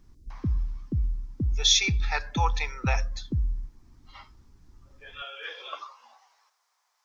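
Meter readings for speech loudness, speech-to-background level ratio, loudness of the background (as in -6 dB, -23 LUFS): -27.5 LUFS, 4.0 dB, -31.5 LUFS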